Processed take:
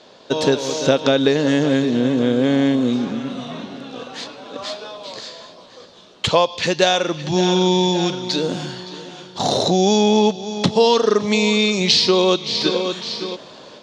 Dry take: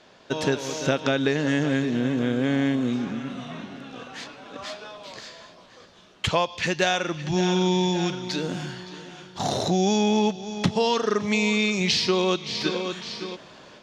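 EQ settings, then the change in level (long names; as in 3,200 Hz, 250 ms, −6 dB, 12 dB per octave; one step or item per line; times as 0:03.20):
octave-band graphic EQ 125/250/500/1,000/4,000/8,000 Hz +4/+6/+10/+6/+11/+6 dB
−2.5 dB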